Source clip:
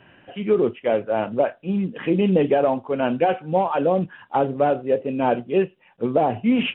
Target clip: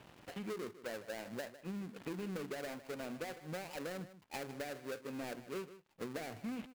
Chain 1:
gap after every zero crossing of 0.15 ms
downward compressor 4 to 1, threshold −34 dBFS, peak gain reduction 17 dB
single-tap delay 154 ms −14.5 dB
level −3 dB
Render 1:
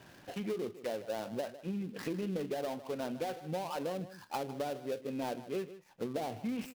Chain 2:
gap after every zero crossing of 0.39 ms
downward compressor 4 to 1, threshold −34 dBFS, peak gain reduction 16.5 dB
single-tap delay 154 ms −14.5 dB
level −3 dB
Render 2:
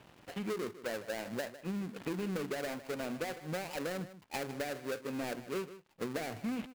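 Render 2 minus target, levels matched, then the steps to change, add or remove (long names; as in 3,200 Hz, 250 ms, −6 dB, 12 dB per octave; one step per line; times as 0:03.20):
downward compressor: peak gain reduction −5 dB
change: downward compressor 4 to 1, threshold −41 dBFS, peak gain reduction 22 dB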